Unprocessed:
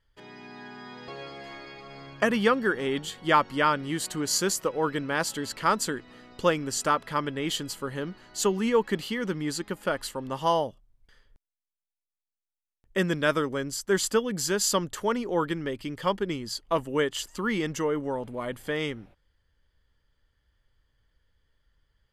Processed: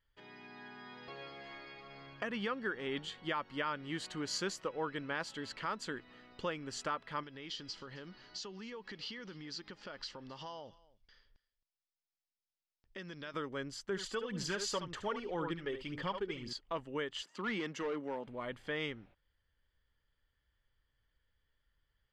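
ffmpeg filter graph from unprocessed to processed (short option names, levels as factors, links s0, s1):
-filter_complex "[0:a]asettb=1/sr,asplit=3[s0][s1][s2];[s0]atrim=end=7.234[s3];[s1]atrim=start=7.23:end=13.34,asetpts=PTS-STARTPTS,afade=t=in:d=0.004:c=qsin,afade=t=out:st=6.106:d=0.004:c=qsin,acompressor=threshold=0.0158:ratio=5:attack=3.2:release=140:knee=1:detection=peak,lowpass=f=5300:t=q:w=4.2,aecho=1:1:266:0.0841,atrim=end_sample=269451[s4];[s2]atrim=start=13.336[s5];[s3][s4]acrossfade=d=0.004:c1=hsin:c2=qsin[s6];[s6][s5]acrossfade=d=0.004:c1=qsin:c2=hsin,asettb=1/sr,asplit=3[s7][s8][s9];[s7]atrim=end=13.894[s10];[s8]atrim=start=13.89:end=16.53,asetpts=PTS-STARTPTS,afade=t=in:d=0.004:c=qsin,afade=t=out:st=2.636:d=0.004:c=qsin,aecho=1:1:71:0.316,atrim=end_sample=116424,aphaser=in_gain=1:out_gain=1:delay=2.7:decay=0.52:speed=1.9:type=sinusoidal[s11];[s9]atrim=start=16.526[s12];[s10][s11]acrossfade=d=0.004:c1=hsin:c2=qsin[s13];[s13][s12]acrossfade=d=0.004:c1=qsin:c2=hsin,asettb=1/sr,asplit=3[s14][s15][s16];[s14]atrim=end=17.224[s17];[s15]atrim=start=17.22:end=18.27,asetpts=PTS-STARTPTS,afade=t=in:d=0.004:c=qsin,afade=t=out:st=1.046:d=0.004:c=qsin,highpass=f=160:w=0.5412,highpass=f=160:w=1.3066,asoftclip=type=hard:threshold=0.0668[s18];[s16]atrim=start=18.266[s19];[s17][s18]acrossfade=d=0.004:c1=hsin:c2=qsin[s20];[s20][s19]acrossfade=d=0.004:c1=qsin:c2=hsin,lowpass=3600,alimiter=limit=0.119:level=0:latency=1:release=291,tiltshelf=f=1400:g=-3.5,volume=0.473"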